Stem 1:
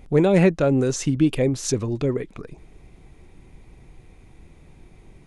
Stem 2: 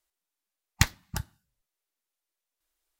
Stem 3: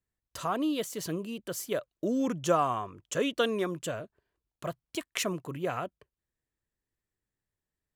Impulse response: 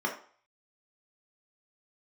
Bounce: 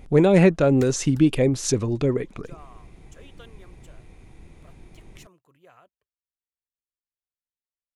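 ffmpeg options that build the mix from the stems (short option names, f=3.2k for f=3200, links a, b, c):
-filter_complex "[0:a]volume=1dB,asplit=2[a][b];[1:a]volume=-18dB[c];[2:a]equalizer=f=200:t=o:w=2.5:g=-7.5,volume=-18.5dB[d];[b]apad=whole_len=350606[e];[d][e]sidechaincompress=threshold=-30dB:ratio=8:attack=16:release=532[f];[a][c][f]amix=inputs=3:normalize=0"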